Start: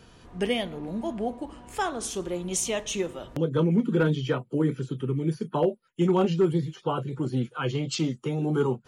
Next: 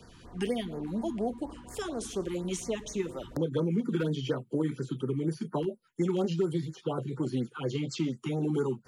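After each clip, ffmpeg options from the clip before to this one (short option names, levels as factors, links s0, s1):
-filter_complex "[0:a]acrossover=split=150|670|3000[s0][s1][s2][s3];[s0]acompressor=threshold=0.00562:ratio=4[s4];[s1]acompressor=threshold=0.0447:ratio=4[s5];[s2]acompressor=threshold=0.00794:ratio=4[s6];[s3]acompressor=threshold=0.00794:ratio=4[s7];[s4][s5][s6][s7]amix=inputs=4:normalize=0,afftfilt=real='re*(1-between(b*sr/1024,520*pow(3200/520,0.5+0.5*sin(2*PI*4.2*pts/sr))/1.41,520*pow(3200/520,0.5+0.5*sin(2*PI*4.2*pts/sr))*1.41))':imag='im*(1-between(b*sr/1024,520*pow(3200/520,0.5+0.5*sin(2*PI*4.2*pts/sr))/1.41,520*pow(3200/520,0.5+0.5*sin(2*PI*4.2*pts/sr))*1.41))':win_size=1024:overlap=0.75"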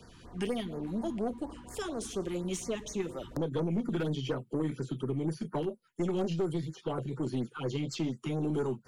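-af "aeval=exprs='(tanh(15.8*val(0)+0.3)-tanh(0.3))/15.8':c=same"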